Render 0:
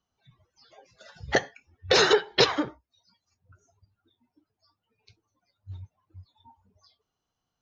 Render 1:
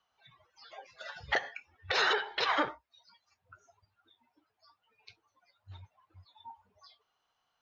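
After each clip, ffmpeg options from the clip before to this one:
ffmpeg -i in.wav -filter_complex "[0:a]acrossover=split=600 4200:gain=0.126 1 0.178[link_01][link_02][link_03];[link_01][link_02][link_03]amix=inputs=3:normalize=0,acompressor=threshold=-28dB:ratio=12,alimiter=level_in=2dB:limit=-24dB:level=0:latency=1:release=113,volume=-2dB,volume=8.5dB" out.wav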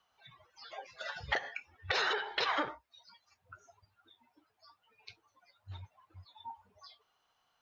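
ffmpeg -i in.wav -af "acompressor=threshold=-32dB:ratio=6,volume=3dB" out.wav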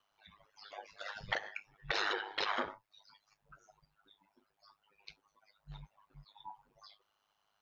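ffmpeg -i in.wav -af "aeval=exprs='val(0)*sin(2*PI*51*n/s)':channel_layout=same" out.wav

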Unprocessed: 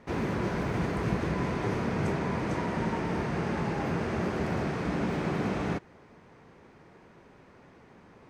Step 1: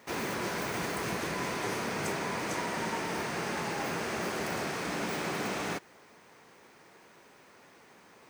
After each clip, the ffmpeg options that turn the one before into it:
ffmpeg -i in.wav -af "aemphasis=mode=production:type=riaa" out.wav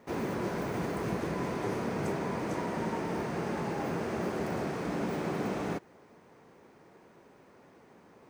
ffmpeg -i in.wav -af "tiltshelf=frequency=1100:gain=7.5,volume=-3dB" out.wav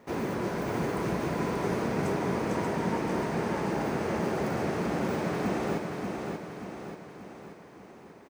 ffmpeg -i in.wav -af "aecho=1:1:584|1168|1752|2336|2920|3504|4088:0.596|0.31|0.161|0.0838|0.0436|0.0226|0.0118,volume=2dB" out.wav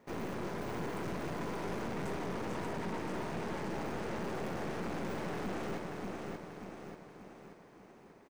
ffmpeg -i in.wav -af "aeval=exprs='(tanh(39.8*val(0)+0.8)-tanh(0.8))/39.8':channel_layout=same,volume=-2.5dB" out.wav

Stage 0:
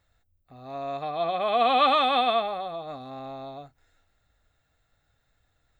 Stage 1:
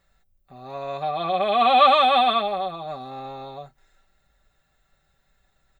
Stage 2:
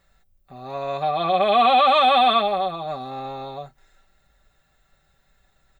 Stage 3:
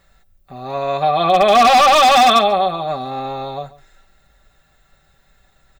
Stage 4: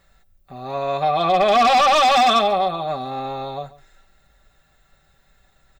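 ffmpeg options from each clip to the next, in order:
ffmpeg -i in.wav -af "aecho=1:1:5.2:0.68,volume=2.5dB" out.wav
ffmpeg -i in.wav -af "alimiter=limit=-12dB:level=0:latency=1:release=31,volume=3.5dB" out.wav
ffmpeg -i in.wav -filter_complex "[0:a]aeval=exprs='0.237*(abs(mod(val(0)/0.237+3,4)-2)-1)':channel_layout=same,asplit=2[link_01][link_02];[link_02]adelay=139.9,volume=-19dB,highshelf=frequency=4000:gain=-3.15[link_03];[link_01][link_03]amix=inputs=2:normalize=0,volume=7dB" out.wav
ffmpeg -i in.wav -af "asoftclip=type=tanh:threshold=-6.5dB,volume=-2.5dB" out.wav

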